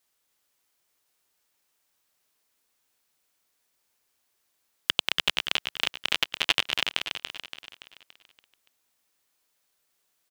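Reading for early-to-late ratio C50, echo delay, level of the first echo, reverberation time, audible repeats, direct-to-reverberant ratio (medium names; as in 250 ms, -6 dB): no reverb, 285 ms, -6.0 dB, no reverb, 5, no reverb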